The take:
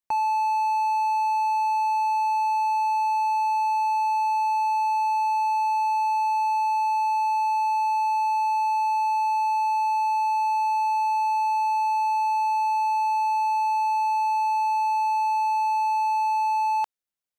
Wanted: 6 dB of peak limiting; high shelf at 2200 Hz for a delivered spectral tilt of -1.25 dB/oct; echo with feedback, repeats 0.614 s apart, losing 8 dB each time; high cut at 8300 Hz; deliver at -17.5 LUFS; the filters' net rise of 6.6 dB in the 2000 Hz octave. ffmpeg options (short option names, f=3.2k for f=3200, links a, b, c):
-af "lowpass=8.3k,equalizer=f=2k:t=o:g=4,highshelf=f=2.2k:g=7,alimiter=limit=-22.5dB:level=0:latency=1,aecho=1:1:614|1228|1842|2456|3070:0.398|0.159|0.0637|0.0255|0.0102,volume=9dB"